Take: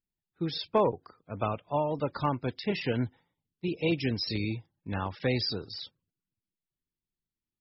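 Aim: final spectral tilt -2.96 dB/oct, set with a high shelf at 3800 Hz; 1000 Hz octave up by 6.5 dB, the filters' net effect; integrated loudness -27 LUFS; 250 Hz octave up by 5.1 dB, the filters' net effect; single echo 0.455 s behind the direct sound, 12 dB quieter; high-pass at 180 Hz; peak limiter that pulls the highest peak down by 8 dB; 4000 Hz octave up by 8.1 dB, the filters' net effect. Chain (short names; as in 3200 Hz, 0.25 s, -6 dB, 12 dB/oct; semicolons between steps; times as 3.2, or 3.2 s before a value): HPF 180 Hz; bell 250 Hz +7.5 dB; bell 1000 Hz +6.5 dB; high shelf 3800 Hz +7.5 dB; bell 4000 Hz +4.5 dB; limiter -16.5 dBFS; echo 0.455 s -12 dB; gain +1.5 dB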